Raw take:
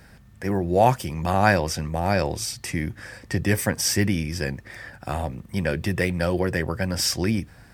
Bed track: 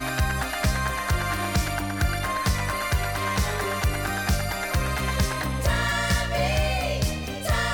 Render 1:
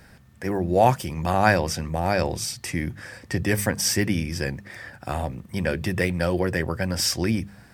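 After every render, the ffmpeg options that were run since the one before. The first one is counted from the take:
-af "bandreject=f=50:t=h:w=4,bandreject=f=100:t=h:w=4,bandreject=f=150:t=h:w=4,bandreject=f=200:t=h:w=4"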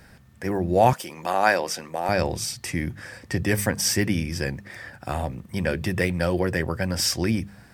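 -filter_complex "[0:a]asettb=1/sr,asplit=3[s0][s1][s2];[s0]atrim=end=0.934[s3];[s1]atrim=start=0.93:end=2.09,asetpts=PTS-STARTPTS,afade=t=in:d=0.004:c=qsin,afade=t=out:st=1.156:d=0.004:c=qsin,highpass=360[s4];[s2]atrim=start=2.086[s5];[s3][s4]acrossfade=d=0.004:c1=hsin:c2=qsin[s6];[s6][s5]acrossfade=d=0.004:c1=qsin:c2=hsin"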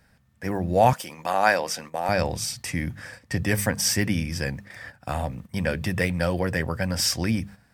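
-af "equalizer=f=360:w=4.3:g=-8,agate=range=0.316:threshold=0.01:ratio=16:detection=peak"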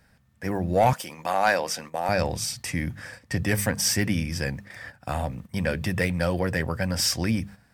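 -af "asoftclip=type=tanh:threshold=0.316"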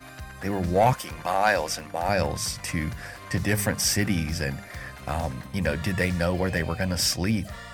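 -filter_complex "[1:a]volume=0.158[s0];[0:a][s0]amix=inputs=2:normalize=0"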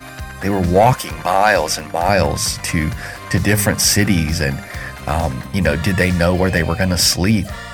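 -af "volume=3.16,alimiter=limit=0.708:level=0:latency=1"

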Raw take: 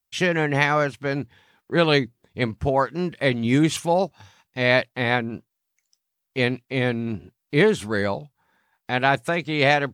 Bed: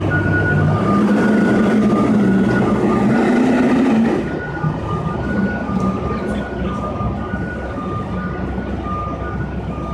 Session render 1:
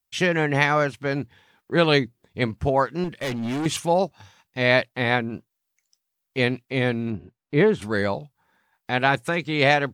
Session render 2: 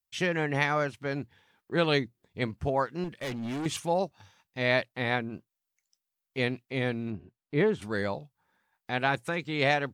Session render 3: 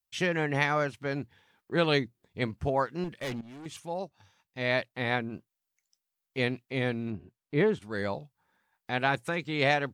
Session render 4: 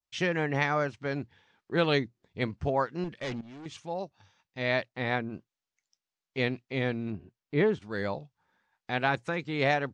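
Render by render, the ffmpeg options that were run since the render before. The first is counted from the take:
-filter_complex "[0:a]asettb=1/sr,asplit=3[s0][s1][s2];[s0]atrim=end=3.044[s3];[s1]atrim=start=3.04:end=3.66,asetpts=PTS-STARTPTS,afade=t=in:d=0.004:c=qsin,afade=t=out:st=0.616:d=0.004:c=qsin,asoftclip=type=hard:threshold=0.0596[s4];[s2]atrim=start=3.656[s5];[s3][s4]acrossfade=d=0.004:c1=hsin:c2=qsin[s6];[s6][s5]acrossfade=d=0.004:c1=qsin:c2=hsin,asettb=1/sr,asplit=3[s7][s8][s9];[s7]atrim=end=7.104[s10];[s8]atrim=start=7.1:end=7.82,asetpts=PTS-STARTPTS,afade=t=in:d=0.004:c=qsin,afade=t=out:st=0.716:d=0.004:c=qsin,lowpass=f=1600:p=1[s11];[s9]atrim=start=7.816[s12];[s10][s11]acrossfade=d=0.004:c1=hsin:c2=qsin[s13];[s13][s12]acrossfade=d=0.004:c1=qsin:c2=hsin,asettb=1/sr,asplit=3[s14][s15][s16];[s14]atrim=end=9.074[s17];[s15]atrim=start=9.07:end=9.56,asetpts=PTS-STARTPTS,afade=t=in:d=0.004:c=qsin,afade=t=out:st=0.486:d=0.004:c=qsin,equalizer=f=650:w=7.9:g=-11[s18];[s16]atrim=start=9.556[s19];[s17][s18]acrossfade=d=0.004:c1=hsin:c2=qsin[s20];[s20][s19]acrossfade=d=0.004:c1=qsin:c2=hsin"
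-af "volume=0.447"
-filter_complex "[0:a]asplit=3[s0][s1][s2];[s0]atrim=end=3.41,asetpts=PTS-STARTPTS,afade=t=out:st=3.406:d=0.004:c=hsin:silence=0.16788[s3];[s1]atrim=start=3.41:end=7.79,asetpts=PTS-STARTPTS,afade=t=in:d=1.83:silence=0.16788,afade=t=out:st=4.376:d=0.004:c=hsin:silence=0.251189[s4];[s2]atrim=start=7.79,asetpts=PTS-STARTPTS,afade=t=in:d=0.4:c=qsin:silence=0.251189[s5];[s3][s4][s5]concat=n=3:v=0:a=1"
-af "lowpass=f=6700:w=0.5412,lowpass=f=6700:w=1.3066,adynamicequalizer=threshold=0.00501:dfrequency=3300:dqfactor=1.1:tfrequency=3300:tqfactor=1.1:attack=5:release=100:ratio=0.375:range=2.5:mode=cutabove:tftype=bell"

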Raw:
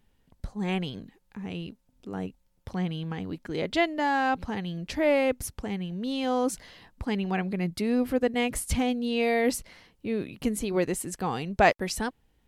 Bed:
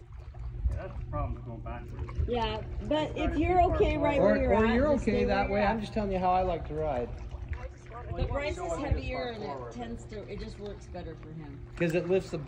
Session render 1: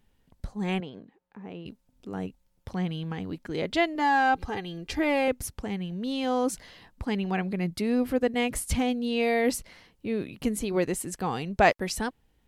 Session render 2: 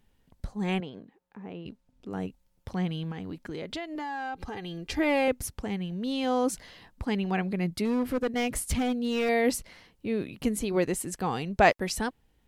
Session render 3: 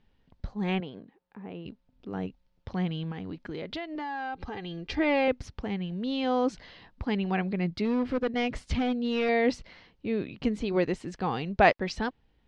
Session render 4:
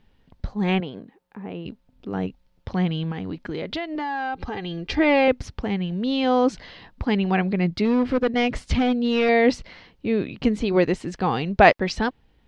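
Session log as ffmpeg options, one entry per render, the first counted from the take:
-filter_complex "[0:a]asettb=1/sr,asplit=3[s0][s1][s2];[s0]atrim=end=0.804[s3];[s1]atrim=start=0.8:end=1.66,asetpts=PTS-STARTPTS,afade=t=in:d=0.004:c=qsin,afade=t=out:st=0.856:d=0.004:c=qsin,bandpass=f=610:t=q:w=0.64[s4];[s2]atrim=start=1.656[s5];[s3][s4]acrossfade=d=0.004:c1=hsin:c2=qsin[s6];[s6][s5]acrossfade=d=0.004:c1=qsin:c2=hsin,asettb=1/sr,asplit=3[s7][s8][s9];[s7]atrim=end=3.954[s10];[s8]atrim=start=3.95:end=5.28,asetpts=PTS-STARTPTS,afade=t=in:d=0.004:c=qsin,afade=t=out:st=1.326:d=0.004:c=qsin,aecho=1:1:2.5:0.59,atrim=end_sample=58653[s11];[s9]atrim=start=5.276[s12];[s10][s11]acrossfade=d=0.004:c1=hsin:c2=qsin[s13];[s13][s12]acrossfade=d=0.004:c1=qsin:c2=hsin"
-filter_complex "[0:a]asettb=1/sr,asplit=3[s0][s1][s2];[s0]atrim=end=1.444[s3];[s1]atrim=start=1.44:end=2.11,asetpts=PTS-STARTPTS,afade=t=in:d=0.004:c=qsin,afade=t=out:st=0.666:d=0.004:c=qsin,highshelf=f=7000:g=-10.5[s4];[s2]atrim=start=2.106[s5];[s3][s4]acrossfade=d=0.004:c1=hsin:c2=qsin[s6];[s6][s5]acrossfade=d=0.004:c1=qsin:c2=hsin,asettb=1/sr,asplit=3[s7][s8][s9];[s7]atrim=end=3.114[s10];[s8]atrim=start=3.11:end=4.75,asetpts=PTS-STARTPTS,afade=t=in:d=0.004:c=qsin,afade=t=out:st=1.636:d=0.004:c=qsin,acompressor=threshold=0.0251:ratio=6:attack=3.2:release=140:knee=1:detection=peak[s11];[s9]atrim=start=4.746[s12];[s10][s11]acrossfade=d=0.004:c1=hsin:c2=qsin[s13];[s13][s12]acrossfade=d=0.004:c1=qsin:c2=hsin,asettb=1/sr,asplit=3[s14][s15][s16];[s14]atrim=end=7.854[s17];[s15]atrim=start=7.85:end=9.29,asetpts=PTS-STARTPTS,afade=t=in:d=0.004:c=qsin,afade=t=out:st=1.436:d=0.004:c=qsin,asoftclip=type=hard:threshold=0.0708[s18];[s16]atrim=start=9.286[s19];[s17][s18]acrossfade=d=0.004:c1=hsin:c2=qsin[s20];[s20][s19]acrossfade=d=0.004:c1=qsin:c2=hsin"
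-af "lowpass=f=4800:w=0.5412,lowpass=f=4800:w=1.3066"
-af "volume=2.24,alimiter=limit=0.708:level=0:latency=1"

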